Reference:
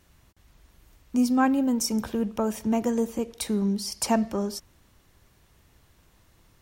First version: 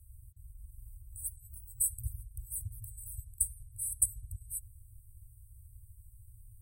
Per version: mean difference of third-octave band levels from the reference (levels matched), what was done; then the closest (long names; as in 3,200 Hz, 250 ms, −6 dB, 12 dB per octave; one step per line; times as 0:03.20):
21.5 dB: brick-wall band-stop 120–7,900 Hz
high-shelf EQ 9,300 Hz −5 dB
level +8 dB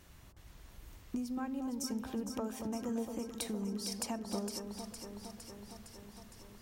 7.0 dB: downward compressor 10 to 1, threshold −38 dBFS, peak gain reduction 22 dB
delay that swaps between a low-pass and a high-pass 230 ms, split 1,100 Hz, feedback 82%, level −6 dB
level +1.5 dB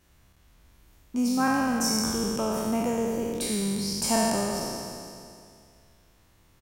10.5 dB: peak hold with a decay on every bin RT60 2.39 s
echo with shifted repeats 107 ms, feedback 65%, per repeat −47 Hz, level −17 dB
level −4.5 dB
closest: second